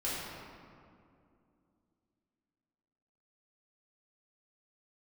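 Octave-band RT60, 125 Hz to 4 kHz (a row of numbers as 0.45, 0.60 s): 3.0, 3.4, 2.6, 2.2, 1.7, 1.2 s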